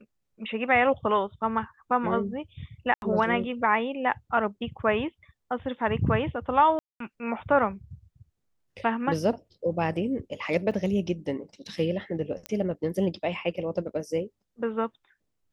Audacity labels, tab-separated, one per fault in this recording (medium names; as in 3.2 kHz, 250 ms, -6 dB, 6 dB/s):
2.940000	3.020000	dropout 81 ms
6.790000	7.000000	dropout 213 ms
10.710000	10.720000	dropout 6.2 ms
12.460000	12.460000	pop -17 dBFS